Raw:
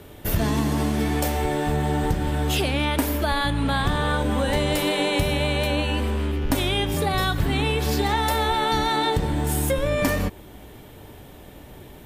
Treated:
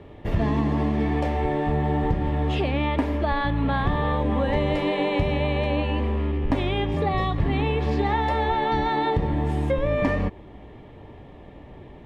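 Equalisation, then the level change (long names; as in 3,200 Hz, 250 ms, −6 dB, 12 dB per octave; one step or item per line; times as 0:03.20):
Butterworth band-reject 1,500 Hz, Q 8
low-pass filter 2,100 Hz 12 dB per octave
notch filter 1,300 Hz, Q 15
0.0 dB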